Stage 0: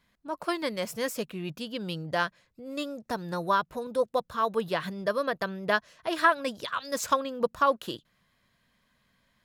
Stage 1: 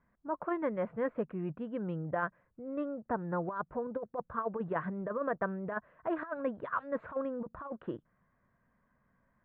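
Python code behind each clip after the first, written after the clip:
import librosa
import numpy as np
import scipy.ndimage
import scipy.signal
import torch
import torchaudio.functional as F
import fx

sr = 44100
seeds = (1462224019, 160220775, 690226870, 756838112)

y = scipy.signal.sosfilt(scipy.signal.cheby2(4, 60, 5200.0, 'lowpass', fs=sr, output='sos'), x)
y = fx.over_compress(y, sr, threshold_db=-28.0, ratio=-0.5)
y = y * 10.0 ** (-3.5 / 20.0)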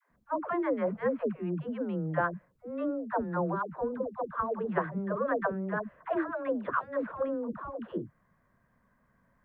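y = fx.dispersion(x, sr, late='lows', ms=111.0, hz=420.0)
y = y * 10.0 ** (4.0 / 20.0)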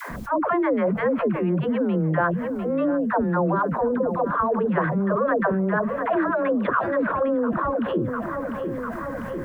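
y = fx.echo_feedback(x, sr, ms=699, feedback_pct=44, wet_db=-18.5)
y = fx.env_flatten(y, sr, amount_pct=70)
y = y * 10.0 ** (5.0 / 20.0)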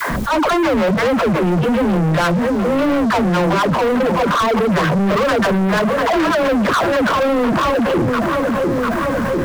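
y = fx.leveller(x, sr, passes=5)
y = y * 10.0 ** (-3.5 / 20.0)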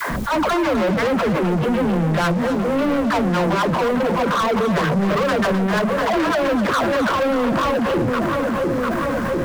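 y = x + 10.0 ** (-10.0 / 20.0) * np.pad(x, (int(257 * sr / 1000.0), 0))[:len(x)]
y = y * 10.0 ** (-3.5 / 20.0)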